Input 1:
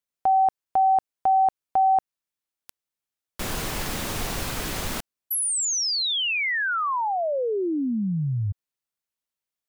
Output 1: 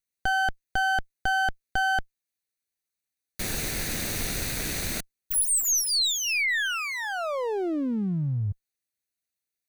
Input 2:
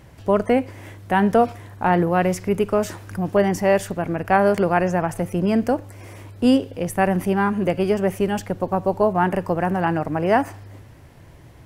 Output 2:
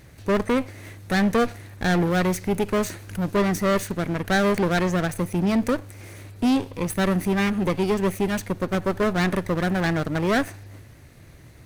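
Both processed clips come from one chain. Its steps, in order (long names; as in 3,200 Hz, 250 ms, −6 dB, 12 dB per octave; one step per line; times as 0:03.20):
lower of the sound and its delayed copy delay 0.48 ms
high-shelf EQ 2,800 Hz +5 dB
hard clipping −15 dBFS
level −1.5 dB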